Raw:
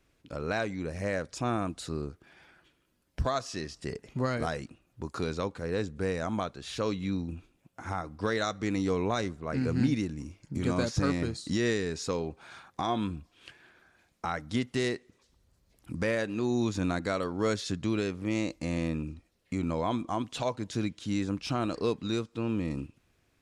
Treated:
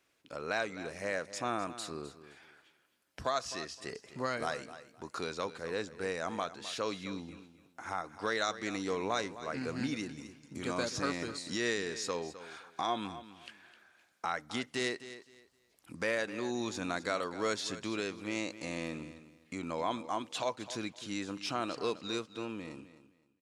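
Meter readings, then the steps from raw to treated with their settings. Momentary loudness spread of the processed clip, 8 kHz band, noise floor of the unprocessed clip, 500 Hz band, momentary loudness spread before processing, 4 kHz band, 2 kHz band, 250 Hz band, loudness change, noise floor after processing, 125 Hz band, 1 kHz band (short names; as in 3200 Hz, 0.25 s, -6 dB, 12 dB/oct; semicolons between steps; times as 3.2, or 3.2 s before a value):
14 LU, 0.0 dB, -71 dBFS, -4.5 dB, 11 LU, 0.0 dB, -0.5 dB, -8.5 dB, -4.5 dB, -72 dBFS, -14.0 dB, -1.5 dB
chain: ending faded out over 1.14 s; HPF 650 Hz 6 dB/oct; on a send: feedback echo 0.259 s, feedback 23%, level -14 dB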